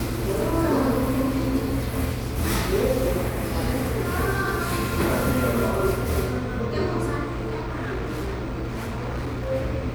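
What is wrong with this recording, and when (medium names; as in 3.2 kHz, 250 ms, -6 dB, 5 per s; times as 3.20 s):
7.22–9.52 s: clipped -25 dBFS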